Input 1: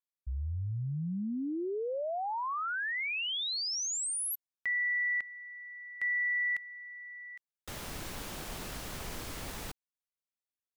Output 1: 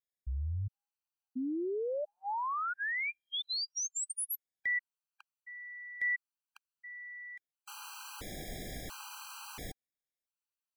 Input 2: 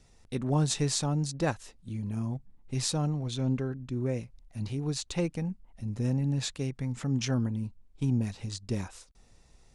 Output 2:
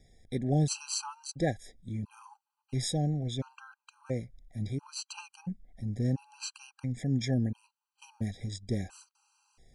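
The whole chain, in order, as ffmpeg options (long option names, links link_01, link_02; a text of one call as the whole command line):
ffmpeg -i in.wav -af "afftfilt=real='re*gt(sin(2*PI*0.73*pts/sr)*(1-2*mod(floor(b*sr/1024/800),2)),0)':imag='im*gt(sin(2*PI*0.73*pts/sr)*(1-2*mod(floor(b*sr/1024/800),2)),0)':win_size=1024:overlap=0.75" out.wav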